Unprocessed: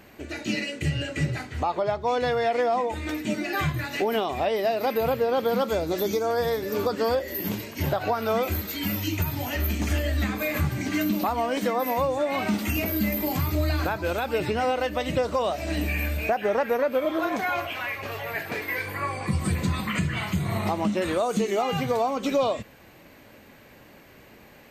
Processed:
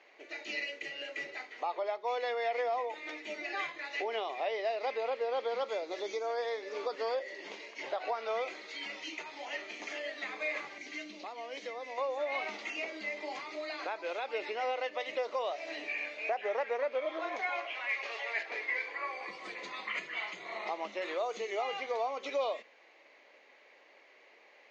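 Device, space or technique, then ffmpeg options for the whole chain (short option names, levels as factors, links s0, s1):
phone speaker on a table: -filter_complex "[0:a]highpass=f=420:w=0.5412,highpass=f=420:w=1.3066,equalizer=f=1500:t=q:w=4:g=-5,equalizer=f=2100:t=q:w=4:g=7,equalizer=f=6600:t=q:w=4:g=8,lowpass=f=7200:w=0.5412,lowpass=f=7200:w=1.3066,bandreject=f=124.1:t=h:w=4,bandreject=f=248.2:t=h:w=4,bandreject=f=372.3:t=h:w=4,asettb=1/sr,asplit=3[s0][s1][s2];[s0]atrim=end=10.784[s3];[s1]atrim=start=10.78:end=11.98,asetpts=PTS-STARTPTS,afade=t=in:d=0.004:c=qsin,afade=t=out:st=1.196:d=0.004:c=qsin,equalizer=f=970:t=o:w=2.2:g=-10[s4];[s2]atrim=start=11.976[s5];[s3][s4]acrossfade=d=0.004:c1=hsin:c2=qsin[s6];[s6][s5]acrossfade=d=0.004:c1=qsin:c2=hsin,lowpass=f=5000:w=0.5412,lowpass=f=5000:w=1.3066,asettb=1/sr,asplit=3[s7][s8][s9];[s7]atrim=end=17.894[s10];[s8]atrim=start=17.89:end=18.43,asetpts=PTS-STARTPTS,afade=t=in:d=0.004:c=qsin,afade=t=out:st=0.536:d=0.004:c=qsin,highshelf=f=2400:g=8.5[s11];[s9]atrim=start=18.426[s12];[s10][s11]acrossfade=d=0.004:c1=hsin:c2=qsin[s13];[s13][s12]acrossfade=d=0.004:c1=qsin:c2=hsin,volume=0.376"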